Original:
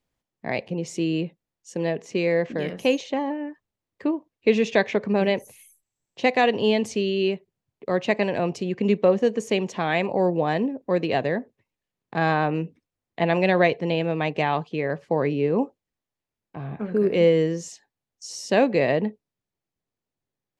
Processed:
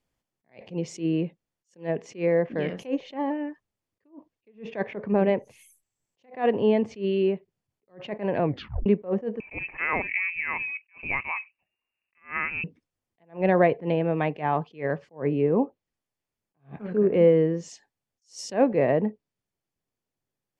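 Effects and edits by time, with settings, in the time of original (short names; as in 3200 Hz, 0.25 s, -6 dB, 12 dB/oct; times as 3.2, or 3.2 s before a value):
8.43 tape stop 0.43 s
9.4–12.64 inverted band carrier 2800 Hz
whole clip: notch 3900 Hz, Q 14; treble ducked by the level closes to 1500 Hz, closed at -19 dBFS; attack slew limiter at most 230 dB/s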